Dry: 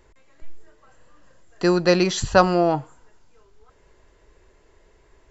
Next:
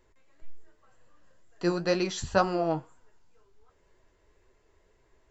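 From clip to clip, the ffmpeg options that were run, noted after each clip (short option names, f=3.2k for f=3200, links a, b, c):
-af "flanger=delay=7.4:depth=5.8:regen=50:speed=2:shape=triangular,volume=-5dB"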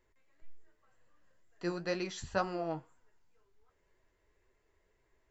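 -af "equalizer=f=2k:t=o:w=0.67:g=4.5,volume=-9dB"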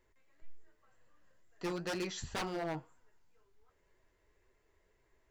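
-af "aeval=exprs='0.0251*(abs(mod(val(0)/0.0251+3,4)-2)-1)':c=same,volume=1dB"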